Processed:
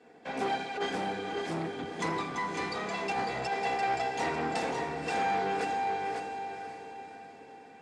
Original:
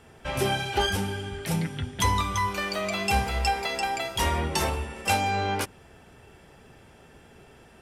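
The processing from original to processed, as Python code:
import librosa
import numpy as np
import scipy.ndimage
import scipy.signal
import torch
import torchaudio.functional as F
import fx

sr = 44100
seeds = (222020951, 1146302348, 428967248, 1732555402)

y = fx.lower_of_two(x, sr, delay_ms=4.1)
y = fx.cabinet(y, sr, low_hz=140.0, low_slope=24, high_hz=7400.0, hz=(1200.0, 3000.0, 5800.0), db=(-9, -8, -5))
y = y + 0.38 * np.pad(y, (int(2.6 * sr / 1000.0), 0))[:len(y)]
y = fx.echo_diffused(y, sr, ms=551, feedback_pct=45, wet_db=-8)
y = fx.over_compress(y, sr, threshold_db=-26.0, ratio=-0.5)
y = fx.high_shelf(y, sr, hz=2400.0, db=-9.0)
y = fx.hum_notches(y, sr, base_hz=50, count=6)
y = y + 10.0 ** (-6.5 / 20.0) * np.pad(y, (int(550 * sr / 1000.0), 0))[:len(y)]
y = fx.transformer_sat(y, sr, knee_hz=940.0)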